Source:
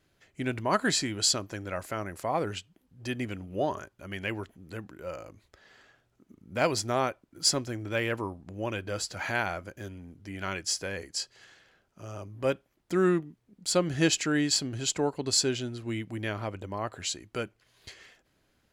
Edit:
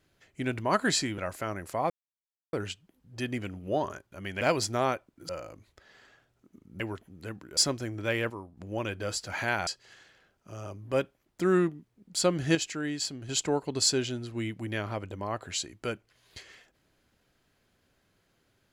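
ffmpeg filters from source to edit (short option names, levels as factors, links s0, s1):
-filter_complex "[0:a]asplit=12[s0][s1][s2][s3][s4][s5][s6][s7][s8][s9][s10][s11];[s0]atrim=end=1.182[s12];[s1]atrim=start=1.678:end=2.4,asetpts=PTS-STARTPTS,afade=t=out:st=0.718:d=0.004:c=hsin,apad=pad_dur=0.63[s13];[s2]atrim=start=2.4:end=4.282,asetpts=PTS-STARTPTS,afade=t=in:d=0.004:c=hsin[s14];[s3]atrim=start=6.558:end=7.442[s15];[s4]atrim=start=5.048:end=6.562[s16];[s5]atrim=start=4.278:end=5.052[s17];[s6]atrim=start=7.438:end=8.172[s18];[s7]atrim=start=8.168:end=8.442,asetpts=PTS-STARTPTS,volume=0.447[s19];[s8]atrim=start=8.438:end=9.542[s20];[s9]atrim=start=11.178:end=14.062[s21];[s10]atrim=start=14.058:end=14.802,asetpts=PTS-STARTPTS,volume=0.473[s22];[s11]atrim=start=14.798[s23];[s13][s14]concat=n=2:v=0:a=1[s24];[s12][s24]acrossfade=d=0.004:c1=hsin:c2=hsin[s25];[s25][s15]acrossfade=d=0.004:c1=hsin:c2=hsin[s26];[s26][s16]acrossfade=d=0.004:c1=hsin:c2=hsin[s27];[s27][s17]acrossfade=d=0.004:c1=hsin:c2=hsin[s28];[s28][s18]acrossfade=d=0.004:c1=hsin:c2=hsin[s29];[s29][s19]acrossfade=d=0.004:c1=hsin:c2=hsin[s30];[s30][s20]acrossfade=d=0.004:c1=hsin:c2=hsin[s31];[s31][s21]acrossfade=d=0.004:c1=hsin:c2=hsin[s32];[s32][s22]acrossfade=d=0.004:c1=hsin:c2=hsin[s33];[s33][s23]acrossfade=d=0.004:c1=hsin:c2=hsin"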